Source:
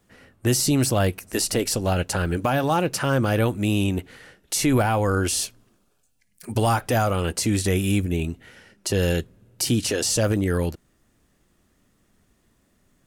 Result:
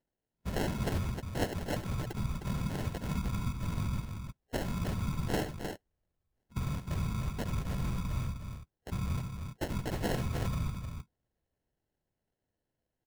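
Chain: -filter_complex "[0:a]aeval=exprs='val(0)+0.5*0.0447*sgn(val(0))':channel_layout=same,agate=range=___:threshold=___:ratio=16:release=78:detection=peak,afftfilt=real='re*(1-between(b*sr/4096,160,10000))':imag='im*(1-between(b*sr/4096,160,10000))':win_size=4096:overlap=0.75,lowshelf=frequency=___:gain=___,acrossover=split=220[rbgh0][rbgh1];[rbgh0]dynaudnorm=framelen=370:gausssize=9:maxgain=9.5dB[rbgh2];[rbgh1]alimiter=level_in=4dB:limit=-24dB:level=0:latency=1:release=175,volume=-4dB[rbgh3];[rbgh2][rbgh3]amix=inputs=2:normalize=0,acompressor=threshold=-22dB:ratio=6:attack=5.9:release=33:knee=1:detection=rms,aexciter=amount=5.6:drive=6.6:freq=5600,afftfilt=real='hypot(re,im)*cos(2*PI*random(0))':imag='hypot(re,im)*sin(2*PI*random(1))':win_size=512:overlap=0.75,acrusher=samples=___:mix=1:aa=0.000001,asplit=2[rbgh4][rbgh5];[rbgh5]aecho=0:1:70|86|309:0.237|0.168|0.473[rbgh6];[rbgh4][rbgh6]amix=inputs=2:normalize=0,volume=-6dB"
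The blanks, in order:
-54dB, -23dB, 150, 12, 37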